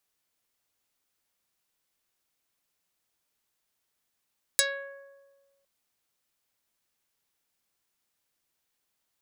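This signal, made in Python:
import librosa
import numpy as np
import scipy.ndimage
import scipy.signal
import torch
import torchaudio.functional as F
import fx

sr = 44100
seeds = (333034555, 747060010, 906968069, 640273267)

y = fx.pluck(sr, length_s=1.06, note=73, decay_s=1.47, pick=0.47, brightness='dark')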